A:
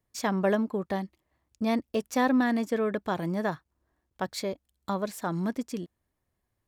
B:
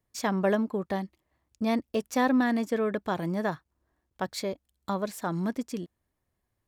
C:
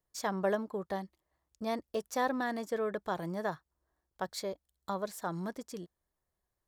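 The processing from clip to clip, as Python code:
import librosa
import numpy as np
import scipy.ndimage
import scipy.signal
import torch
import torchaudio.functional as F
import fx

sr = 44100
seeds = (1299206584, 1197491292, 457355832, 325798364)

y1 = x
y2 = fx.graphic_eq_15(y1, sr, hz=(100, 250, 2500), db=(-10, -9, -7))
y2 = y2 * librosa.db_to_amplitude(-3.5)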